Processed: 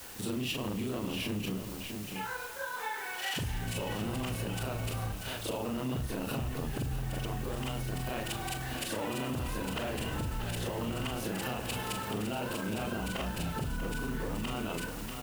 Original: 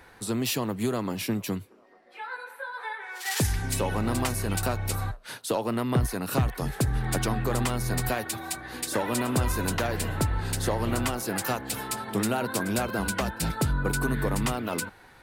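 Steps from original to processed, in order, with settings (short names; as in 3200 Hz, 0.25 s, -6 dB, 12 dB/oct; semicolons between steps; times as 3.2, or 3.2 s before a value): short-time reversal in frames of 95 ms; tilt shelf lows +4.5 dB, about 1400 Hz; on a send: frequency-shifting echo 0.101 s, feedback 62%, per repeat -65 Hz, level -17.5 dB; on the sum: limiter -24 dBFS, peak gain reduction 11 dB; bell 2900 Hz +13.5 dB 0.49 oct; echo 0.639 s -10.5 dB; in parallel at -10 dB: requantised 6-bit, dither triangular; on the sum: compressor 3:1, threshold -31 dBFS, peak gain reduction 6 dB; gain -1.5 dB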